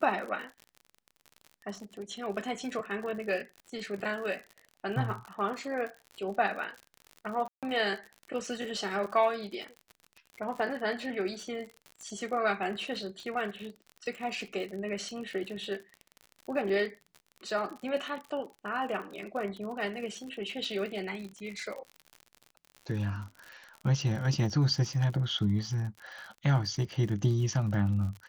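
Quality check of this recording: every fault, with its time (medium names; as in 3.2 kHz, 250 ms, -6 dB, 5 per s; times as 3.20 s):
crackle 59 per s -38 dBFS
7.48–7.63 s: dropout 147 ms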